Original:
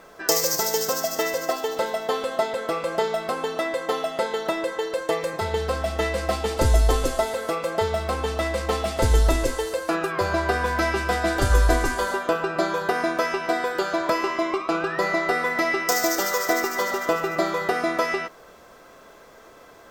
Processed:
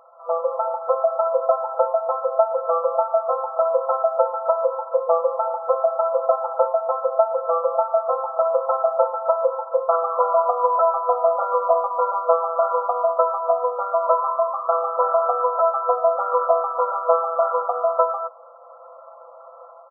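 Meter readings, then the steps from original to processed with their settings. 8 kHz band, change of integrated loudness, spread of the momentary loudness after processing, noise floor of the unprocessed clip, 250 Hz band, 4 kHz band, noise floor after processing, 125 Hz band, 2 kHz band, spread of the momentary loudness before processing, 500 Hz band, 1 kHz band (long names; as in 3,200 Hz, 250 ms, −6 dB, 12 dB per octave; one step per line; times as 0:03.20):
below −40 dB, +3.0 dB, 3 LU, −48 dBFS, below −40 dB, below −40 dB, −44 dBFS, below −40 dB, below −25 dB, 6 LU, +5.5 dB, +6.0 dB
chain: brick-wall band-pass 490–1,400 Hz
comb filter 6 ms, depth 65%
automatic gain control gain up to 8 dB
level −2.5 dB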